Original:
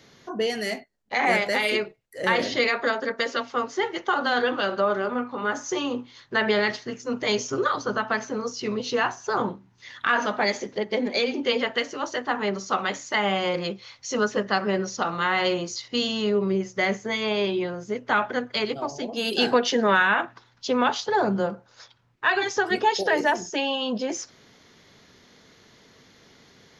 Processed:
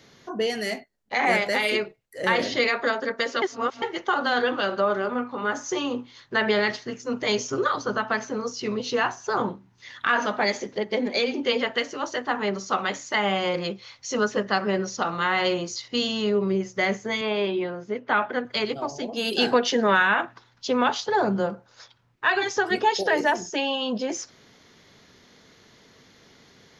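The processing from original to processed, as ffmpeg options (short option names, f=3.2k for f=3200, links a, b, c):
-filter_complex "[0:a]asettb=1/sr,asplit=3[a][b][c];[a]atrim=end=17.214[d];[b]atrim=start=17.21:end=18.45,asetpts=PTS-STARTPTS,afade=t=in:d=0.004:c=qsin,afade=t=out:st=1.236:d=0.004:c=qsin,highpass=170,lowpass=3.5k[e];[c]atrim=start=18.446[f];[d][e]acrossfade=d=0.004:c1=hsin:c2=qsin[g];[g][f]acrossfade=d=0.004:c1=qsin:c2=hsin,asplit=3[h][i][j];[h]atrim=end=3.422[k];[i]atrim=start=3.418:end=3.822,asetpts=PTS-STARTPTS,areverse[l];[j]atrim=start=3.818[m];[k][l]acrossfade=d=0.004:c1=hsin:c2=hsin[n];[n][m]acrossfade=d=0.004:c1=hsin:c2=hsin"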